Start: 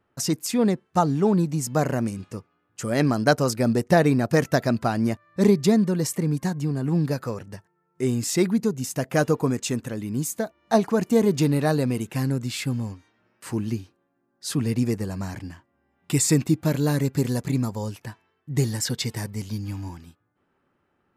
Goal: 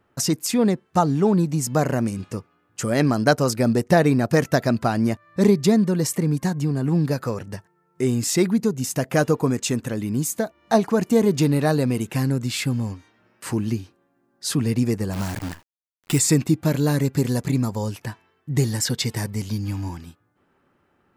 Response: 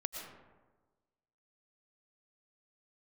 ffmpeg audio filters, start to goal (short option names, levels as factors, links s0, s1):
-filter_complex "[0:a]asplit=2[s0][s1];[s1]acompressor=threshold=0.0316:ratio=6,volume=0.944[s2];[s0][s2]amix=inputs=2:normalize=0,asplit=3[s3][s4][s5];[s3]afade=t=out:st=15.12:d=0.02[s6];[s4]acrusher=bits=6:dc=4:mix=0:aa=0.000001,afade=t=in:st=15.12:d=0.02,afade=t=out:st=16.18:d=0.02[s7];[s5]afade=t=in:st=16.18:d=0.02[s8];[s6][s7][s8]amix=inputs=3:normalize=0"